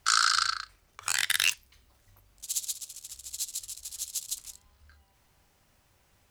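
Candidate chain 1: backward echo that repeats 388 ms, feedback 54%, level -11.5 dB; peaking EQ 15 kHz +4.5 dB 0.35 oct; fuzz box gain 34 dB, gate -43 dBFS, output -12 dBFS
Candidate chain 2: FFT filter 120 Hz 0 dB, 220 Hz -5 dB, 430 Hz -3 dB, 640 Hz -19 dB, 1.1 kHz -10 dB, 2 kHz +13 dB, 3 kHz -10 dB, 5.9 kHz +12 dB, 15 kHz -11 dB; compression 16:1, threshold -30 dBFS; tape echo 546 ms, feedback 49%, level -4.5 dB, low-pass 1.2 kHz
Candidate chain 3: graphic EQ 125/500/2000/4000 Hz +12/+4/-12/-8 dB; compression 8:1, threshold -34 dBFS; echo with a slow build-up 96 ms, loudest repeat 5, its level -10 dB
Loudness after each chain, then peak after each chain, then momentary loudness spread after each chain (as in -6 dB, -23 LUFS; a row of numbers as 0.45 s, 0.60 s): -18.5 LUFS, -35.0 LUFS, -38.5 LUFS; -9.5 dBFS, -10.0 dBFS, -17.5 dBFS; 15 LU, 16 LU, 10 LU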